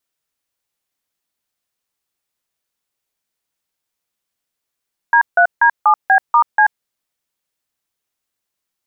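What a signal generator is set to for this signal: DTMF "D3D7B*C", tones 84 ms, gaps 158 ms, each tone -10 dBFS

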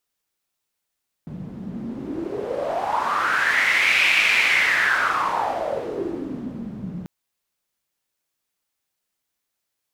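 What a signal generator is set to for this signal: wind-like swept noise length 5.79 s, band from 180 Hz, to 2.4 kHz, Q 6.1, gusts 1, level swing 14.5 dB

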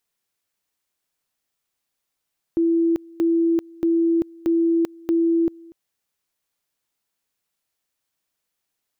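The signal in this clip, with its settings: two-level tone 333 Hz -15.5 dBFS, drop 25 dB, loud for 0.39 s, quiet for 0.24 s, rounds 5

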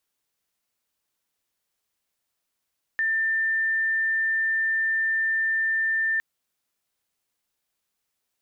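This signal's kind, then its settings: tone sine 1.79 kHz -21 dBFS 3.21 s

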